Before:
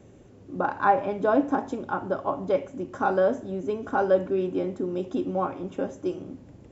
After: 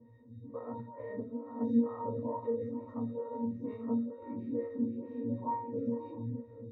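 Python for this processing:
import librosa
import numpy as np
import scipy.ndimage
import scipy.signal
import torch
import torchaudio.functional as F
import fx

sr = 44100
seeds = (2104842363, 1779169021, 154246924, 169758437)

p1 = fx.spec_dilate(x, sr, span_ms=120)
p2 = fx.over_compress(p1, sr, threshold_db=-21.0, ratio=-0.5)
p3 = fx.formant_shift(p2, sr, semitones=-2)
p4 = fx.octave_resonator(p3, sr, note='A#', decay_s=0.4)
p5 = p4 + fx.echo_multitap(p4, sr, ms=(77, 538, 746), db=(-10.5, -17.0, -16.5), dry=0)
p6 = fx.stagger_phaser(p5, sr, hz=2.2)
y = p6 * 10.0 ** (7.5 / 20.0)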